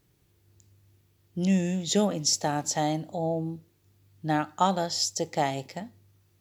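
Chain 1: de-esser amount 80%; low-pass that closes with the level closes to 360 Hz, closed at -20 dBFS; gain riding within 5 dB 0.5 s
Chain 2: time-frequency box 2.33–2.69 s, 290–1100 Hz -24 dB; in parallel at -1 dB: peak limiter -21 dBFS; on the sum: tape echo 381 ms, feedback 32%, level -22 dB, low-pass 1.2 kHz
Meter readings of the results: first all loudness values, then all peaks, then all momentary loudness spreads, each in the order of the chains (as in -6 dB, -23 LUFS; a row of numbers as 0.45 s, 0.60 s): -31.0 LUFS, -24.0 LUFS; -11.5 dBFS, -7.5 dBFS; 9 LU, 13 LU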